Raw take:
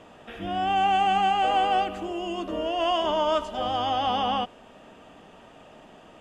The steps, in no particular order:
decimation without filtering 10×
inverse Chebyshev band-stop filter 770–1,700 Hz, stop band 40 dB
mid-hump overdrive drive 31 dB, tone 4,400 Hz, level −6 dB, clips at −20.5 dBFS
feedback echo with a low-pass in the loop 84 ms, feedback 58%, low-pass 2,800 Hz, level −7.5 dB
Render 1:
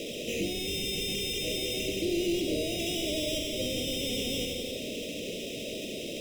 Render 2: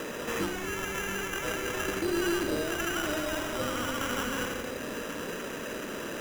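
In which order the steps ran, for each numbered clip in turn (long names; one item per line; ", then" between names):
feedback echo with a low-pass in the loop, then decimation without filtering, then mid-hump overdrive, then inverse Chebyshev band-stop filter
feedback echo with a low-pass in the loop, then mid-hump overdrive, then inverse Chebyshev band-stop filter, then decimation without filtering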